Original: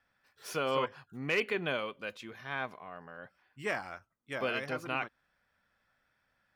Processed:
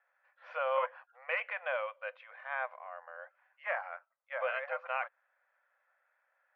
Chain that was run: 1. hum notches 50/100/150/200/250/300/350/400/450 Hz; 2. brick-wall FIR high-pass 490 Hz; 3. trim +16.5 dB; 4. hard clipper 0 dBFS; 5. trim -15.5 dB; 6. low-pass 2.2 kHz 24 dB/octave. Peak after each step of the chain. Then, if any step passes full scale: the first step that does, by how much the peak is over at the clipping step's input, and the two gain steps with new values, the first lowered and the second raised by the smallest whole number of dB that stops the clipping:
-18.5 dBFS, -19.5 dBFS, -3.0 dBFS, -3.0 dBFS, -18.5 dBFS, -19.0 dBFS; nothing clips

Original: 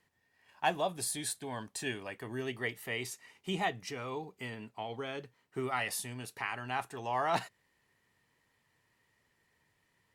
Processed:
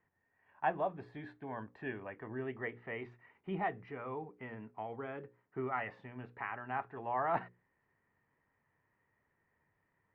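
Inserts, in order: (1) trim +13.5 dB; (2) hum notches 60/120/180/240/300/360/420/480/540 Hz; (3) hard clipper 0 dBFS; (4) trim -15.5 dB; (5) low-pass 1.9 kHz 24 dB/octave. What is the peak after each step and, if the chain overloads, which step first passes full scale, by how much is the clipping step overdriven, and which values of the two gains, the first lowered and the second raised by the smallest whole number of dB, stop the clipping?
-2.0 dBFS, -2.5 dBFS, -2.5 dBFS, -18.0 dBFS, -20.0 dBFS; nothing clips

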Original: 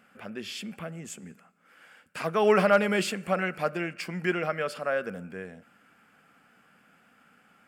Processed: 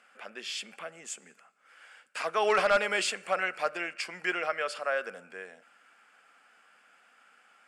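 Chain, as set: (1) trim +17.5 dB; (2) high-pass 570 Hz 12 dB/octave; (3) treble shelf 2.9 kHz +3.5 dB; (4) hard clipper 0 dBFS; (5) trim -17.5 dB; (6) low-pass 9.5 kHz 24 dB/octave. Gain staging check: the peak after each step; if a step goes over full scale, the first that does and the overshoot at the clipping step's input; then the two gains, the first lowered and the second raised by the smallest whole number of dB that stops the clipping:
+8.0 dBFS, +7.5 dBFS, +8.0 dBFS, 0.0 dBFS, -17.5 dBFS, -16.5 dBFS; step 1, 8.0 dB; step 1 +9.5 dB, step 5 -9.5 dB

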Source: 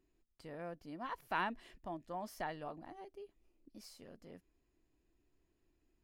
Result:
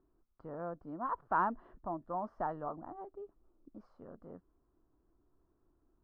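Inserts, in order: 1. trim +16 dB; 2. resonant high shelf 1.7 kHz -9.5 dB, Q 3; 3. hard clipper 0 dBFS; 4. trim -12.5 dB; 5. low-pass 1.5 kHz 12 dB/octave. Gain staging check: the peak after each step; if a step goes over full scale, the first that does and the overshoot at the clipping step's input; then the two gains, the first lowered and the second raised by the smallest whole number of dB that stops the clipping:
-6.5 dBFS, -4.5 dBFS, -4.5 dBFS, -17.0 dBFS, -18.5 dBFS; nothing clips

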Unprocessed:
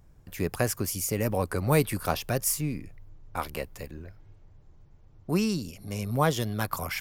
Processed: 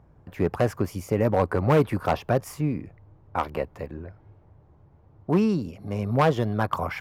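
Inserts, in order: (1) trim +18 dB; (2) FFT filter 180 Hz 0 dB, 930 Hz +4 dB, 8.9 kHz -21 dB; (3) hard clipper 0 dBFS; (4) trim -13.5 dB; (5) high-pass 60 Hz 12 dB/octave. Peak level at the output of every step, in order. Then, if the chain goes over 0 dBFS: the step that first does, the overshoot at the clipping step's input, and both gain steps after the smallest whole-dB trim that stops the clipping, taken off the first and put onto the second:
+9.5 dBFS, +9.5 dBFS, 0.0 dBFS, -13.5 dBFS, -10.0 dBFS; step 1, 9.5 dB; step 1 +8 dB, step 4 -3.5 dB

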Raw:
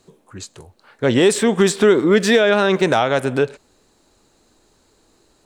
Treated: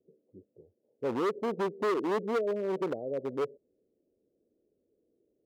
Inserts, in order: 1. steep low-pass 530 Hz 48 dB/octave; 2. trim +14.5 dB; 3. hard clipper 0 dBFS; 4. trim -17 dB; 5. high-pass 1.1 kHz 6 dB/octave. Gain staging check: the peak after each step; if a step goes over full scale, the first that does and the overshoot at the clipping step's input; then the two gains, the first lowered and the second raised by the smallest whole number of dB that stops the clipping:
-5.0 dBFS, +9.5 dBFS, 0.0 dBFS, -17.0 dBFS, -18.5 dBFS; step 2, 9.5 dB; step 2 +4.5 dB, step 4 -7 dB

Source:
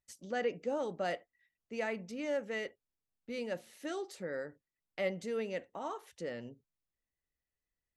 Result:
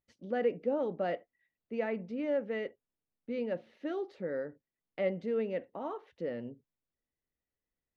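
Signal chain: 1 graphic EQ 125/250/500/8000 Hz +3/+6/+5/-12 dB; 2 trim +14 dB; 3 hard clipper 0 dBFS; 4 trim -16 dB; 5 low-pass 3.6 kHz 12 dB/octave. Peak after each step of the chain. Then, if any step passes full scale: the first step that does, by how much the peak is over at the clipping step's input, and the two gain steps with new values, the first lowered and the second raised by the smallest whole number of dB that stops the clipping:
-18.0 dBFS, -4.0 dBFS, -4.0 dBFS, -20.0 dBFS, -20.0 dBFS; nothing clips

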